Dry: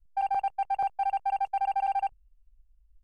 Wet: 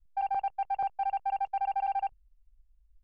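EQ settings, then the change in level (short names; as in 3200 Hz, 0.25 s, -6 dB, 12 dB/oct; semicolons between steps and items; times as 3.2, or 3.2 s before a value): air absorption 140 m; -2.0 dB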